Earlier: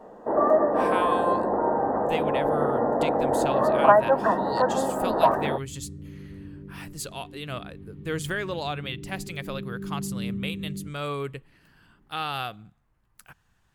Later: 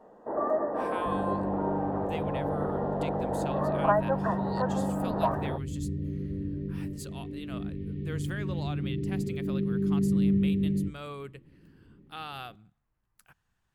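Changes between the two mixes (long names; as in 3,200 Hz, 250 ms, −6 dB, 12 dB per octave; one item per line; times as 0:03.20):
speech −9.5 dB
first sound −8.0 dB
second sound +7.5 dB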